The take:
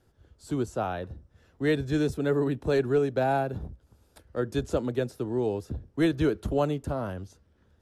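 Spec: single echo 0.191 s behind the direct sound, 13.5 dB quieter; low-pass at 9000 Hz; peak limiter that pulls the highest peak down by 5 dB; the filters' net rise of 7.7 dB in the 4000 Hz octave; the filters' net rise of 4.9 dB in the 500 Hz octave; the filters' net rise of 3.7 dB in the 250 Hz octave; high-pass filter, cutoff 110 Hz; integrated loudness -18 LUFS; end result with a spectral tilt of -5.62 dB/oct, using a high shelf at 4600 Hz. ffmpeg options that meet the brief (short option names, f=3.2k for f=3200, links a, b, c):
-af "highpass=110,lowpass=9k,equalizer=f=250:t=o:g=3,equalizer=f=500:t=o:g=5,equalizer=f=4k:t=o:g=6.5,highshelf=f=4.6k:g=6,alimiter=limit=-14.5dB:level=0:latency=1,aecho=1:1:191:0.211,volume=8dB"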